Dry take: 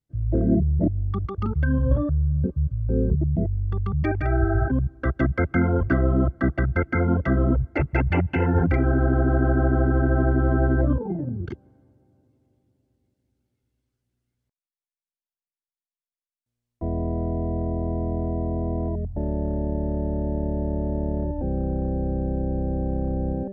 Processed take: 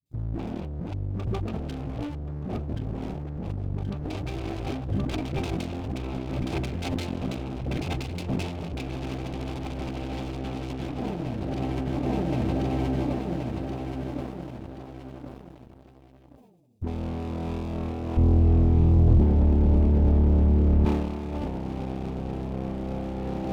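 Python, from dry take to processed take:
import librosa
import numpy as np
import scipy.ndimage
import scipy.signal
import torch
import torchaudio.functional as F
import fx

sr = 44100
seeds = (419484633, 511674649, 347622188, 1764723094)

y = fx.lower_of_two(x, sr, delay_ms=0.82)
y = fx.highpass(y, sr, hz=150.0, slope=6)
y = fx.notch(y, sr, hz=1400.0, q=5.9)
y = fx.echo_feedback(y, sr, ms=1077, feedback_pct=46, wet_db=-11)
y = fx.tube_stage(y, sr, drive_db=32.0, bias=0.25)
y = fx.band_shelf(y, sr, hz=1400.0, db=-11.5, octaves=1.3)
y = fx.dispersion(y, sr, late='highs', ms=60.0, hz=350.0)
y = fx.over_compress(y, sr, threshold_db=-42.0, ratio=-1.0)
y = fx.tilt_eq(y, sr, slope=-4.5, at=(18.17, 20.85))
y = fx.leveller(y, sr, passes=2)
y = fx.sustainer(y, sr, db_per_s=45.0)
y = F.gain(torch.from_numpy(y), 3.5).numpy()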